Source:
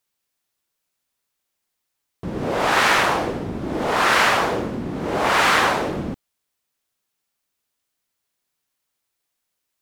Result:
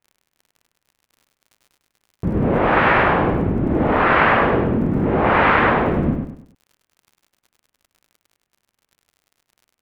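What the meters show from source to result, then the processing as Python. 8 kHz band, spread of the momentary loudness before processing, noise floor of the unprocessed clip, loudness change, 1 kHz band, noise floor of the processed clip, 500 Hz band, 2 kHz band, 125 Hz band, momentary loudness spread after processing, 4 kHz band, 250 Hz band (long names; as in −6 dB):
below −25 dB, 13 LU, −79 dBFS, +2.5 dB, +2.5 dB, −81 dBFS, +5.0 dB, +1.0 dB, +10.5 dB, 8 LU, −8.5 dB, +8.0 dB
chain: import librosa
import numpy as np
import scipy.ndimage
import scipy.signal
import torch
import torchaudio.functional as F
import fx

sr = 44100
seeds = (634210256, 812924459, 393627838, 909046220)

p1 = scipy.signal.sosfilt(scipy.signal.butter(4, 2500.0, 'lowpass', fs=sr, output='sos'), x)
p2 = fx.low_shelf(p1, sr, hz=320.0, db=11.0)
p3 = fx.dmg_crackle(p2, sr, seeds[0], per_s=37.0, level_db=-40.0)
y = p3 + fx.echo_feedback(p3, sr, ms=101, feedback_pct=35, wet_db=-5.0, dry=0)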